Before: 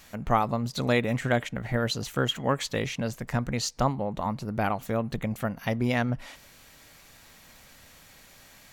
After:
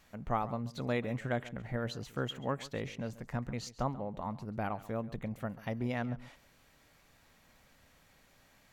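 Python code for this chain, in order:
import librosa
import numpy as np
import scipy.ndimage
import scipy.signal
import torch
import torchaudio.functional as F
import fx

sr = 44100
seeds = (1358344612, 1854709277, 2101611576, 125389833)

p1 = fx.high_shelf(x, sr, hz=2800.0, db=-8.0)
p2 = p1 + fx.echo_single(p1, sr, ms=136, db=-17.5, dry=0)
y = F.gain(torch.from_numpy(p2), -8.5).numpy()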